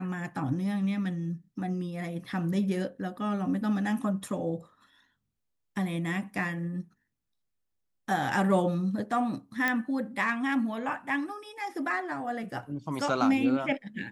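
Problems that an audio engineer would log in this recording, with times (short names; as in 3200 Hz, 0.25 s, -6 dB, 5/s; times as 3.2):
9.68 pop -13 dBFS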